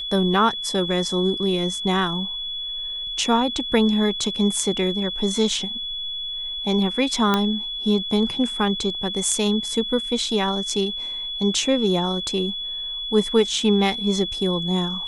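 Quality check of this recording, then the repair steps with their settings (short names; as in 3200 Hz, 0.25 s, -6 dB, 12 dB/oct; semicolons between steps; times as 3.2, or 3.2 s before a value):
tone 3400 Hz -27 dBFS
7.34 pop -6 dBFS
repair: de-click; notch 3400 Hz, Q 30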